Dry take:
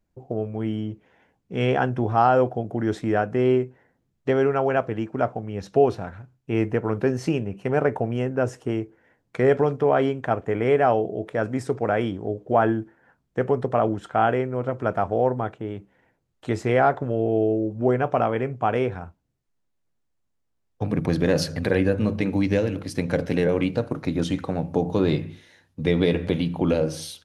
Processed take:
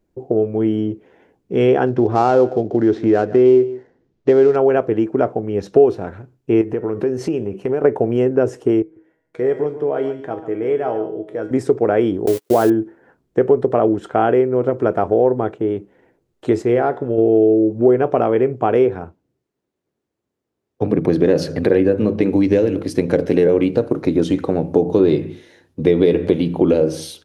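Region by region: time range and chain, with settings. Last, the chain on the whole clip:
1.86–4.56 switching dead time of 0.063 ms + LPF 6000 Hz 24 dB/oct + echo 0.152 s -19.5 dB
6.61–7.84 de-hum 371 Hz, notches 36 + compressor 4:1, threshold -28 dBFS
8.82–11.51 resonator 160 Hz, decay 0.51 s, mix 80% + echo 0.141 s -12.5 dB
12.26–12.7 switching spikes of -18 dBFS + gate -32 dBFS, range -40 dB
16.62–17.18 resonator 120 Hz, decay 0.54 s, mix 50% + short-mantissa float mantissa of 8-bit
18.85–22.23 HPF 78 Hz + high shelf 5800 Hz -6 dB
whole clip: bell 380 Hz +12.5 dB 1.1 oct; compressor 2:1, threshold -16 dBFS; gain +3 dB

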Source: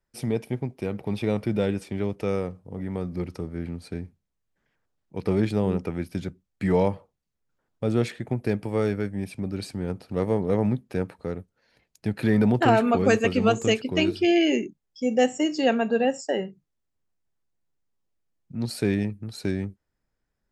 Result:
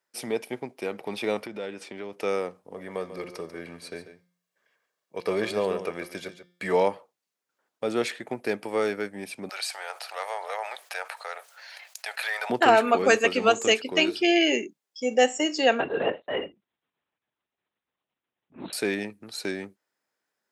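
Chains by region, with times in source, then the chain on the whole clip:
1.46–2.13 compressor 4:1, threshold -29 dBFS + air absorption 51 m
2.74–6.73 comb 1.8 ms, depth 43% + de-hum 176.8 Hz, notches 35 + echo 0.142 s -11.5 dB
9.49–12.5 steep high-pass 660 Hz + bell 970 Hz -3 dB 0.44 oct + fast leveller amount 50%
15.8–18.73 transient shaper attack -8 dB, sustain +2 dB + LPC vocoder at 8 kHz whisper
whole clip: HPF 290 Hz 12 dB/oct; low shelf 420 Hz -9.5 dB; gain +5 dB

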